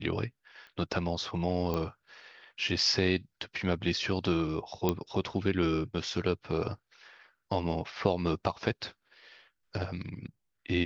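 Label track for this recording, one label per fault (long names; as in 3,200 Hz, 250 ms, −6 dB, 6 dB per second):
0.670000	0.670000	click −37 dBFS
1.740000	1.740000	click −19 dBFS
4.890000	4.890000	click −13 dBFS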